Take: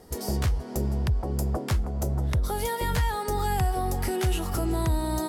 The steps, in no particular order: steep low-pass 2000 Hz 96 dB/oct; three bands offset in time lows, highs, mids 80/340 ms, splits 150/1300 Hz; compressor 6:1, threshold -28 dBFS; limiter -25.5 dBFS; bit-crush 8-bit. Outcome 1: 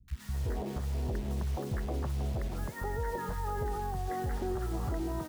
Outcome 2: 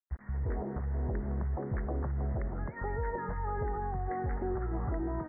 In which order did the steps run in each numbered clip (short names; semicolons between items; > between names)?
steep low-pass > compressor > bit-crush > three bands offset in time > limiter; compressor > three bands offset in time > bit-crush > steep low-pass > limiter